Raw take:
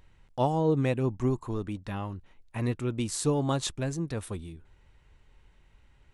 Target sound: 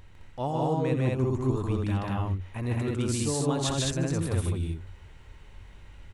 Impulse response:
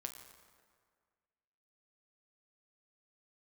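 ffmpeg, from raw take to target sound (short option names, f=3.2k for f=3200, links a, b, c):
-af "equalizer=f=91:w=7.8:g=12,areverse,acompressor=threshold=-36dB:ratio=4,areverse,aecho=1:1:84.55|151.6|212.8:0.282|0.891|0.891,volume=6.5dB"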